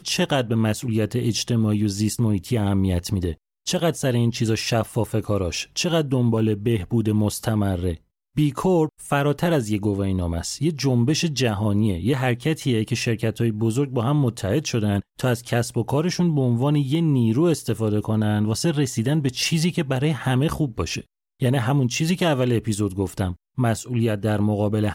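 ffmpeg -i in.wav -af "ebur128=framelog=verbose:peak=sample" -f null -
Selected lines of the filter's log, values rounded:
Integrated loudness:
  I:         -22.5 LUFS
  Threshold: -32.5 LUFS
Loudness range:
  LRA:         1.7 LU
  Threshold: -42.5 LUFS
  LRA low:   -23.1 LUFS
  LRA high:  -21.5 LUFS
Sample peak:
  Peak:       -7.6 dBFS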